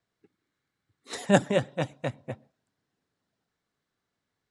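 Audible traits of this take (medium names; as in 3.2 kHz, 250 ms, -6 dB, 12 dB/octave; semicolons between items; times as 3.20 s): noise floor -84 dBFS; spectral tilt -5.0 dB/octave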